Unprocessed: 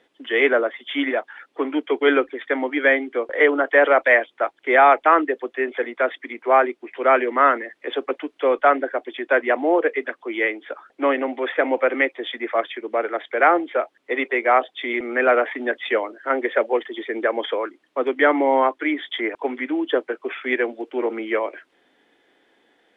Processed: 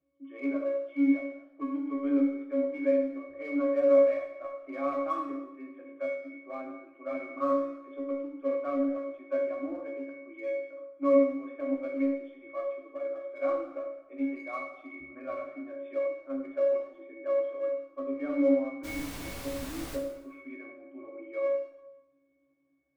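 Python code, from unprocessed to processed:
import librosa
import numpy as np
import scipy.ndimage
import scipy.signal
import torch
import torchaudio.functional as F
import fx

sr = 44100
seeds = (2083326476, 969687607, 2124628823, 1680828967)

p1 = fx.low_shelf(x, sr, hz=170.0, db=5.0)
p2 = fx.octave_resonator(p1, sr, note='C#', decay_s=0.55)
p3 = np.sign(p2) * np.maximum(np.abs(p2) - 10.0 ** (-41.5 / 20.0), 0.0)
p4 = p2 + (p3 * librosa.db_to_amplitude(-11.5))
p5 = fx.dmg_noise_colour(p4, sr, seeds[0], colour='pink', level_db=-45.0, at=(18.83, 19.95), fade=0.02)
p6 = fx.rev_plate(p5, sr, seeds[1], rt60_s=0.95, hf_ratio=0.85, predelay_ms=0, drr_db=0.5)
y = p6 * librosa.db_to_amplitude(1.0)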